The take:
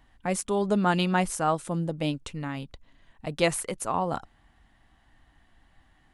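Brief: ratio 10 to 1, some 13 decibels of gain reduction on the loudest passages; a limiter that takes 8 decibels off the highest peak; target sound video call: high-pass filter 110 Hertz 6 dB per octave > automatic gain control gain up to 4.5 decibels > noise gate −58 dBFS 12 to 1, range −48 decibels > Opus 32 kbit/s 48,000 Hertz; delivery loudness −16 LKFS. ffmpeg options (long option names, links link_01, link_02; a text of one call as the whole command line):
ffmpeg -i in.wav -af "acompressor=threshold=-32dB:ratio=10,alimiter=level_in=4.5dB:limit=-24dB:level=0:latency=1,volume=-4.5dB,highpass=frequency=110:poles=1,dynaudnorm=maxgain=4.5dB,agate=range=-48dB:threshold=-58dB:ratio=12,volume=24.5dB" -ar 48000 -c:a libopus -b:a 32k out.opus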